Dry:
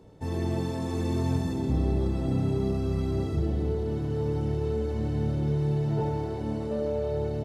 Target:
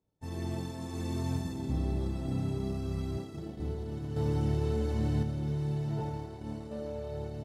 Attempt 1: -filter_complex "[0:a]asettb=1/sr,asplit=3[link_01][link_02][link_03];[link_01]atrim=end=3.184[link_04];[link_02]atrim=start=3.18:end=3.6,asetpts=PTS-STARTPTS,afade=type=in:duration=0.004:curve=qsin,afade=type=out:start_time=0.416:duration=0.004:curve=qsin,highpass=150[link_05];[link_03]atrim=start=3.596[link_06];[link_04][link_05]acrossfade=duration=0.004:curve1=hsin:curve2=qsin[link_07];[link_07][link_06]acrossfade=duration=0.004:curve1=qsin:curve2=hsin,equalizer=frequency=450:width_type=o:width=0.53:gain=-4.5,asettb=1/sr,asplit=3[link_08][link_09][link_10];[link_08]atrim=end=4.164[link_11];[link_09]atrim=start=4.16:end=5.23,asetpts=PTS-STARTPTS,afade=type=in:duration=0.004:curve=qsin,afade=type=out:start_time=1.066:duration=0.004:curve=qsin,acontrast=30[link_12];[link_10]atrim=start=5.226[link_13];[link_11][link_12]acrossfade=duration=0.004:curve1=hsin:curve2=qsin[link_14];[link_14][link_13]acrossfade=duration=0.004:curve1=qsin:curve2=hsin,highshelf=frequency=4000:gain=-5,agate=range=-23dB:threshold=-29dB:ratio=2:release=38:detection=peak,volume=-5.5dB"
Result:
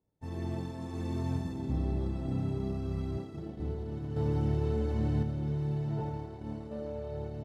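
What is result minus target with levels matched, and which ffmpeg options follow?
8,000 Hz band −8.5 dB
-filter_complex "[0:a]asettb=1/sr,asplit=3[link_01][link_02][link_03];[link_01]atrim=end=3.184[link_04];[link_02]atrim=start=3.18:end=3.6,asetpts=PTS-STARTPTS,afade=type=in:duration=0.004:curve=qsin,afade=type=out:start_time=0.416:duration=0.004:curve=qsin,highpass=150[link_05];[link_03]atrim=start=3.596[link_06];[link_04][link_05]acrossfade=duration=0.004:curve1=hsin:curve2=qsin[link_07];[link_07][link_06]acrossfade=duration=0.004:curve1=qsin:curve2=hsin,equalizer=frequency=450:width_type=o:width=0.53:gain=-4.5,asettb=1/sr,asplit=3[link_08][link_09][link_10];[link_08]atrim=end=4.164[link_11];[link_09]atrim=start=4.16:end=5.23,asetpts=PTS-STARTPTS,afade=type=in:duration=0.004:curve=qsin,afade=type=out:start_time=1.066:duration=0.004:curve=qsin,acontrast=30[link_12];[link_10]atrim=start=5.226[link_13];[link_11][link_12]acrossfade=duration=0.004:curve1=hsin:curve2=qsin[link_14];[link_14][link_13]acrossfade=duration=0.004:curve1=qsin:curve2=hsin,highshelf=frequency=4000:gain=6,agate=range=-23dB:threshold=-29dB:ratio=2:release=38:detection=peak,volume=-5.5dB"

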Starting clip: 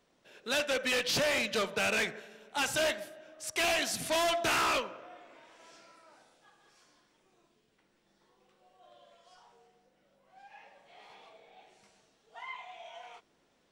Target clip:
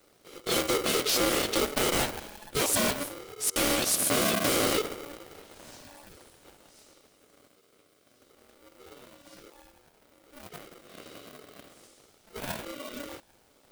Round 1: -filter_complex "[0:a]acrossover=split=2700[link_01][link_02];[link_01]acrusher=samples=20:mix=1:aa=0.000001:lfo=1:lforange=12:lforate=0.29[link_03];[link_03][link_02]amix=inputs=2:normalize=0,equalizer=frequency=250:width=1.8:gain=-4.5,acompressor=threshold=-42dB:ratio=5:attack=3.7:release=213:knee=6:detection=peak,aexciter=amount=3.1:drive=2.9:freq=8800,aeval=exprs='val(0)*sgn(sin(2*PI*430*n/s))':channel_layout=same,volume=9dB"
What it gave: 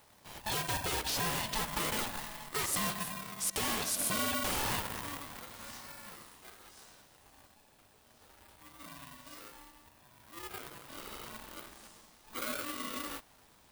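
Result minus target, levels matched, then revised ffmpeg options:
sample-and-hold swept by an LFO: distortion −24 dB; downward compressor: peak gain reduction +8.5 dB
-filter_complex "[0:a]acrossover=split=2700[link_01][link_02];[link_01]acrusher=samples=73:mix=1:aa=0.000001:lfo=1:lforange=43.8:lforate=0.29[link_03];[link_03][link_02]amix=inputs=2:normalize=0,equalizer=frequency=250:width=1.8:gain=-4.5,acompressor=threshold=-31.5dB:ratio=5:attack=3.7:release=213:knee=6:detection=peak,aexciter=amount=3.1:drive=2.9:freq=8800,aeval=exprs='val(0)*sgn(sin(2*PI*430*n/s))':channel_layout=same,volume=9dB"

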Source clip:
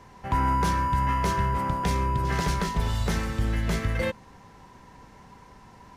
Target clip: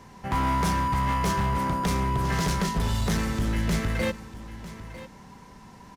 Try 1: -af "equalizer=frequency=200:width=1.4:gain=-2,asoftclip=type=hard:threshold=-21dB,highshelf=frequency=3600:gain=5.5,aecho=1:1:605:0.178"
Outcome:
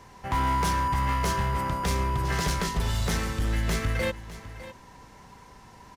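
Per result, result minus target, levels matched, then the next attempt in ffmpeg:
echo 345 ms early; 250 Hz band −4.0 dB
-af "equalizer=frequency=200:width=1.4:gain=-2,asoftclip=type=hard:threshold=-21dB,highshelf=frequency=3600:gain=5.5,aecho=1:1:950:0.178"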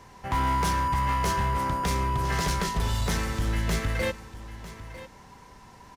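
250 Hz band −4.5 dB
-af "equalizer=frequency=200:width=1.4:gain=6,asoftclip=type=hard:threshold=-21dB,highshelf=frequency=3600:gain=5.5,aecho=1:1:950:0.178"

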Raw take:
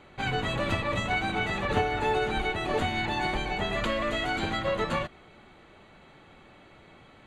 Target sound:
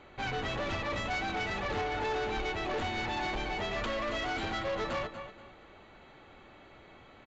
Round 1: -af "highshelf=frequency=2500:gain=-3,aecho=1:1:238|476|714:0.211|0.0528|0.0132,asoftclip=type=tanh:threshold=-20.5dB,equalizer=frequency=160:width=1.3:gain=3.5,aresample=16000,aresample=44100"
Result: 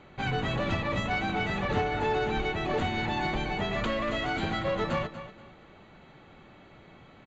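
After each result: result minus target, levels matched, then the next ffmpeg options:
soft clipping: distortion −9 dB; 125 Hz band +4.5 dB
-af "highshelf=frequency=2500:gain=-3,aecho=1:1:238|476|714:0.211|0.0528|0.0132,asoftclip=type=tanh:threshold=-29dB,equalizer=frequency=160:width=1.3:gain=3.5,aresample=16000,aresample=44100"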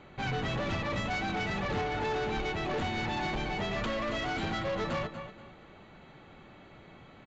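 125 Hz band +4.5 dB
-af "highshelf=frequency=2500:gain=-3,aecho=1:1:238|476|714:0.211|0.0528|0.0132,asoftclip=type=tanh:threshold=-29dB,equalizer=frequency=160:width=1.3:gain=-6,aresample=16000,aresample=44100"

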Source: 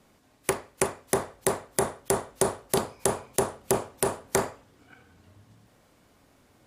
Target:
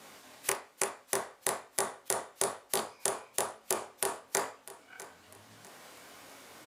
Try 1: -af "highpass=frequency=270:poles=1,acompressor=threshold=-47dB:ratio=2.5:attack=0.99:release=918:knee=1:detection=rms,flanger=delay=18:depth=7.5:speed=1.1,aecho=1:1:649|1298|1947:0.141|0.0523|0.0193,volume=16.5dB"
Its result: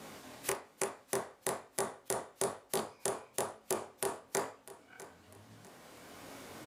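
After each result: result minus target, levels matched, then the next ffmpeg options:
downward compressor: peak gain reduction +5.5 dB; 250 Hz band +5.5 dB
-af "highpass=frequency=270:poles=1,acompressor=threshold=-37.5dB:ratio=2.5:attack=0.99:release=918:knee=1:detection=rms,flanger=delay=18:depth=7.5:speed=1.1,aecho=1:1:649|1298|1947:0.141|0.0523|0.0193,volume=16.5dB"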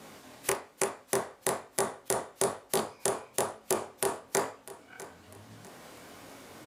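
250 Hz band +5.0 dB
-af "highpass=frequency=880:poles=1,acompressor=threshold=-37.5dB:ratio=2.5:attack=0.99:release=918:knee=1:detection=rms,flanger=delay=18:depth=7.5:speed=1.1,aecho=1:1:649|1298|1947:0.141|0.0523|0.0193,volume=16.5dB"

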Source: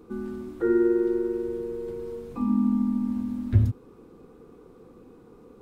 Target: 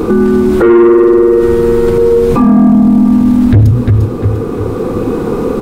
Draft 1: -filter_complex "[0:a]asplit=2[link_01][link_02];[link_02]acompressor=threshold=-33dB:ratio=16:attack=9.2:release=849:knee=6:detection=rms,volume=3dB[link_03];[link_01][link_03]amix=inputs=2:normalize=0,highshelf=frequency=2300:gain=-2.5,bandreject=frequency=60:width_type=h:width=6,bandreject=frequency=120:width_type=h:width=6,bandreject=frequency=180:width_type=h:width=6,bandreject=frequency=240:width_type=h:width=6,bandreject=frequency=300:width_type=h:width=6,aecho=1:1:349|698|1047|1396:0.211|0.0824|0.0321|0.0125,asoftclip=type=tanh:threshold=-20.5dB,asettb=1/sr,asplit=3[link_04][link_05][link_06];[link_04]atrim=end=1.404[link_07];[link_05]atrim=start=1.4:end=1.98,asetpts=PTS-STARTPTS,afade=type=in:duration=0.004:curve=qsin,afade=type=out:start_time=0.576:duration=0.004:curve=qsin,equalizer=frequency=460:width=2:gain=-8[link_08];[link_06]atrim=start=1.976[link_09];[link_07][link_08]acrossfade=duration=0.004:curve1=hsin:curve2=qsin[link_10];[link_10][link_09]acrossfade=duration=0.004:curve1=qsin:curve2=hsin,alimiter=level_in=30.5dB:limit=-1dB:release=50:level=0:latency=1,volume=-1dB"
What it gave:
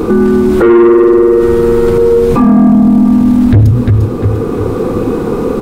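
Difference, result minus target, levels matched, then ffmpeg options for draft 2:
downward compressor: peak gain reduction −6 dB
-filter_complex "[0:a]asplit=2[link_01][link_02];[link_02]acompressor=threshold=-39.5dB:ratio=16:attack=9.2:release=849:knee=6:detection=rms,volume=3dB[link_03];[link_01][link_03]amix=inputs=2:normalize=0,highshelf=frequency=2300:gain=-2.5,bandreject=frequency=60:width_type=h:width=6,bandreject=frequency=120:width_type=h:width=6,bandreject=frequency=180:width_type=h:width=6,bandreject=frequency=240:width_type=h:width=6,bandreject=frequency=300:width_type=h:width=6,aecho=1:1:349|698|1047|1396:0.211|0.0824|0.0321|0.0125,asoftclip=type=tanh:threshold=-20.5dB,asettb=1/sr,asplit=3[link_04][link_05][link_06];[link_04]atrim=end=1.404[link_07];[link_05]atrim=start=1.4:end=1.98,asetpts=PTS-STARTPTS,afade=type=in:duration=0.004:curve=qsin,afade=type=out:start_time=0.576:duration=0.004:curve=qsin,equalizer=frequency=460:width=2:gain=-8[link_08];[link_06]atrim=start=1.976[link_09];[link_07][link_08]acrossfade=duration=0.004:curve1=hsin:curve2=qsin[link_10];[link_10][link_09]acrossfade=duration=0.004:curve1=qsin:curve2=hsin,alimiter=level_in=30.5dB:limit=-1dB:release=50:level=0:latency=1,volume=-1dB"

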